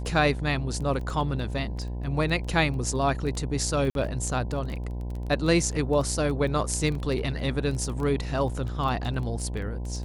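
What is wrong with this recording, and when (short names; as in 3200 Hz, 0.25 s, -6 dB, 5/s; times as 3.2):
buzz 60 Hz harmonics 17 -32 dBFS
crackle 13/s -31 dBFS
3.9–3.95 gap 52 ms
6.95 gap 2.7 ms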